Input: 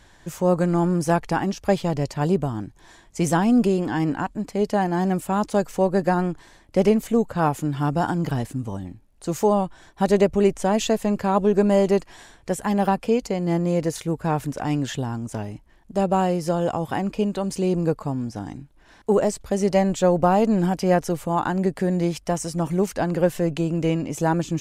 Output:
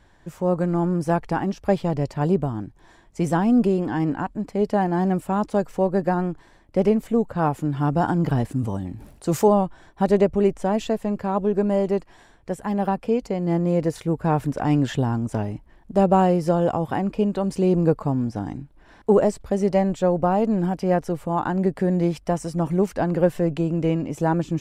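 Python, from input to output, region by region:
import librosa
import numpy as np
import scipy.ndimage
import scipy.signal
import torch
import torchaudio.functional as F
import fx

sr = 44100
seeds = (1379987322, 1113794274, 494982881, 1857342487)

y = fx.chain(x, sr, fx.highpass(hz=49.0, slope=12),
    fx.high_shelf(hz=4200.0, db=6.0),
    fx.sustainer(db_per_s=69.0), at=(8.51, 9.48))
y = fx.high_shelf(y, sr, hz=2400.0, db=-9.5)
y = fx.notch(y, sr, hz=6500.0, q=17.0)
y = fx.rider(y, sr, range_db=10, speed_s=2.0)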